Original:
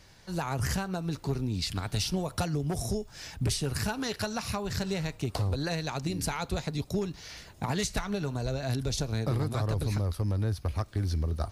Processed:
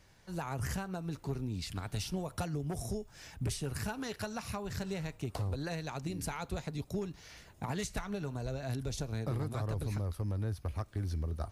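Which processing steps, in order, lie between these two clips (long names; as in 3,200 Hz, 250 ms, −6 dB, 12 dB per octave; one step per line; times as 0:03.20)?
parametric band 4,500 Hz −5 dB 0.87 octaves
level −6 dB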